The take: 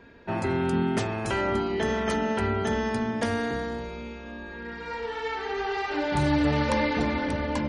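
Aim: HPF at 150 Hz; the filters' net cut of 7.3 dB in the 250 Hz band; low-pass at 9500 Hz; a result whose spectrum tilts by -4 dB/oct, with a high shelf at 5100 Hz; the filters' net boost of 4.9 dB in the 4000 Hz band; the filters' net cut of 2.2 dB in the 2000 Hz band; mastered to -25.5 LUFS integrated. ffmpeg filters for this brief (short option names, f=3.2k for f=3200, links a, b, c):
-af "highpass=150,lowpass=9.5k,equalizer=f=250:t=o:g=-8.5,equalizer=f=2k:t=o:g=-4.5,equalizer=f=4k:t=o:g=6,highshelf=f=5.1k:g=4.5,volume=4.5dB"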